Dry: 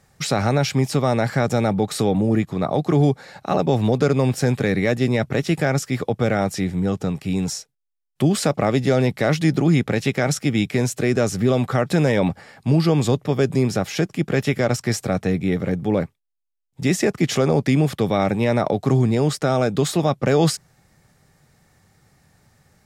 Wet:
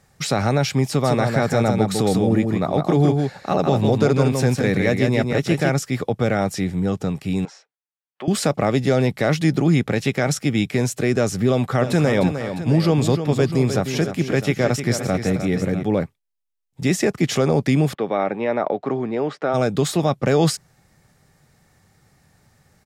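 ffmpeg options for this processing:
ffmpeg -i in.wav -filter_complex "[0:a]asplit=3[link_01][link_02][link_03];[link_01]afade=type=out:start_time=1.03:duration=0.02[link_04];[link_02]aecho=1:1:157:0.596,afade=type=in:start_time=1.03:duration=0.02,afade=type=out:start_time=5.72:duration=0.02[link_05];[link_03]afade=type=in:start_time=5.72:duration=0.02[link_06];[link_04][link_05][link_06]amix=inputs=3:normalize=0,asettb=1/sr,asplit=3[link_07][link_08][link_09];[link_07]atrim=end=7.454[link_10];[link_08]atrim=start=7.45:end=8.28,asetpts=PTS-STARTPTS,afade=type=in:duration=0.004:curve=qsin,afade=type=out:start_time=0.826:duration=0.004:curve=qsin,highpass=660,lowpass=2200[link_11];[link_09]atrim=start=8.276[link_12];[link_10][link_11]acrossfade=duration=0.004:curve1=hsin:curve2=qsin[link_13];[link_13][link_12]acrossfade=duration=0.004:curve1=qsin:curve2=hsin,asplit=3[link_14][link_15][link_16];[link_14]afade=type=out:start_time=11.8:duration=0.02[link_17];[link_15]aecho=1:1:305|656:0.355|0.224,afade=type=in:start_time=11.8:duration=0.02,afade=type=out:start_time=15.82:duration=0.02[link_18];[link_16]afade=type=in:start_time=15.82:duration=0.02[link_19];[link_17][link_18][link_19]amix=inputs=3:normalize=0,asplit=3[link_20][link_21][link_22];[link_20]afade=type=out:start_time=17.93:duration=0.02[link_23];[link_21]highpass=310,lowpass=2200,afade=type=in:start_time=17.93:duration=0.02,afade=type=out:start_time=19.53:duration=0.02[link_24];[link_22]afade=type=in:start_time=19.53:duration=0.02[link_25];[link_23][link_24][link_25]amix=inputs=3:normalize=0" out.wav

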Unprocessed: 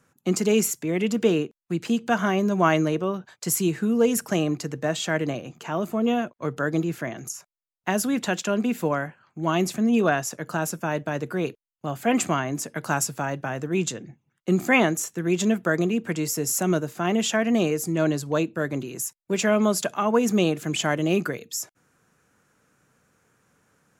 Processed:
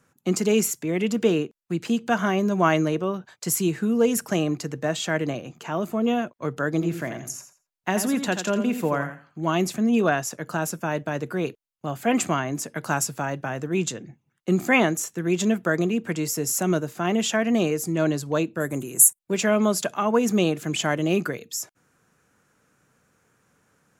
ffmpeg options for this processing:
ffmpeg -i in.wav -filter_complex "[0:a]asettb=1/sr,asplit=3[link_01][link_02][link_03];[link_01]atrim=end=6.734[link_04];[link_02]atrim=start=6.73:end=9.45,asetpts=PTS-STARTPTS,afade=type=in:duration=0.004:curve=qsin,afade=type=out:start_time=2.716:duration=0.004:curve=qsin,aecho=1:1:85|170|255:0.355|0.0745|0.0156,atrim=end_sample=119952[link_05];[link_03]atrim=start=9.446[link_06];[link_04][link_05]acrossfade=duration=0.004:curve1=hsin:curve2=qsin[link_07];[link_07][link_06]acrossfade=duration=0.004:curve1=qsin:curve2=hsin,asettb=1/sr,asplit=3[link_08][link_09][link_10];[link_08]atrim=end=18.604[link_11];[link_09]atrim=start=18.6:end=19.19,asetpts=PTS-STARTPTS,afade=type=in:duration=0.004:curve=qsin,afade=type=out:start_time=0.586:duration=0.004:curve=qsin,highshelf=frequency=6500:width_type=q:width=3:gain=12.5[link_12];[link_10]atrim=start=19.186[link_13];[link_11][link_12]acrossfade=duration=0.004:curve1=hsin:curve2=qsin[link_14];[link_14][link_13]acrossfade=duration=0.004:curve1=qsin:curve2=hsin" out.wav

